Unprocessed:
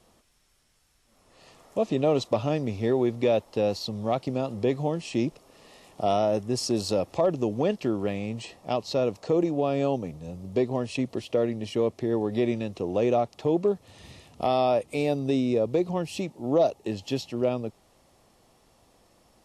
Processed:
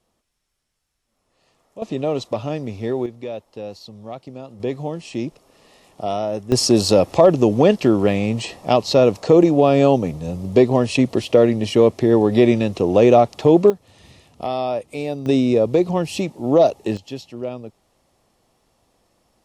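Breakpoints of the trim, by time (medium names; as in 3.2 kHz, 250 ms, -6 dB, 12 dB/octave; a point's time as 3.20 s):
-9 dB
from 1.82 s +1 dB
from 3.06 s -7 dB
from 4.60 s +0.5 dB
from 6.52 s +11.5 dB
from 13.70 s 0 dB
from 15.26 s +8 dB
from 16.97 s -2.5 dB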